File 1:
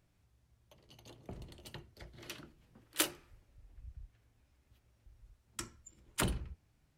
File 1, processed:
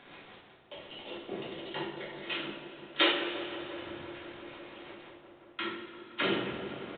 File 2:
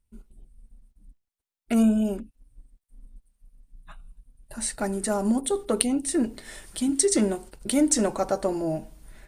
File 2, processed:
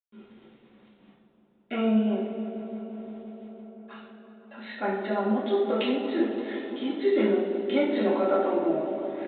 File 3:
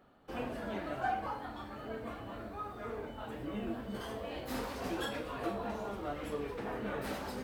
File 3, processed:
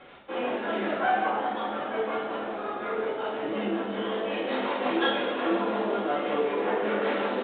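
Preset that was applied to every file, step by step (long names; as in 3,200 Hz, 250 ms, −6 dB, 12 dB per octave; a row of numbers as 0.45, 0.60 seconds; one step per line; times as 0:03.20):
Bessel high-pass filter 320 Hz, order 4
mains-hum notches 60/120/180/240/300/360/420/480 Hz
reversed playback
upward compression, threshold −43 dBFS
reversed playback
rotating-speaker cabinet horn 5.5 Hz
bit-depth reduction 10 bits, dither none
on a send: delay with a low-pass on its return 172 ms, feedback 84%, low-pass 990 Hz, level −10.5 dB
on the sum: coupled-rooms reverb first 0.59 s, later 3 s, from −15 dB, DRR −7 dB
downsampling to 8,000 Hz
normalise the peak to −12 dBFS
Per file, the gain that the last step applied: +7.0, −2.5, +7.5 decibels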